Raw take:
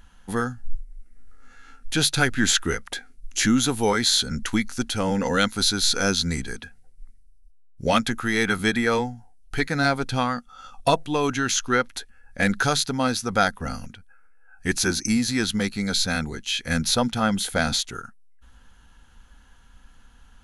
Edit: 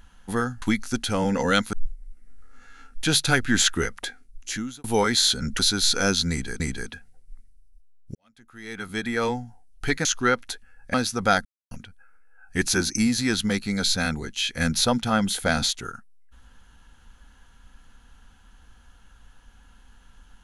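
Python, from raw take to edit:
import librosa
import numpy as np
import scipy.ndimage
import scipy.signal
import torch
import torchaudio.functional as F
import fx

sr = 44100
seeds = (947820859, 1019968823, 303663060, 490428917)

y = fx.edit(x, sr, fx.fade_out_span(start_s=2.9, length_s=0.83),
    fx.move(start_s=4.48, length_s=1.11, to_s=0.62),
    fx.repeat(start_s=6.3, length_s=0.3, count=2),
    fx.fade_in_span(start_s=7.85, length_s=1.27, curve='qua'),
    fx.cut(start_s=9.75, length_s=1.77),
    fx.cut(start_s=12.41, length_s=0.63),
    fx.silence(start_s=13.55, length_s=0.26), tone=tone)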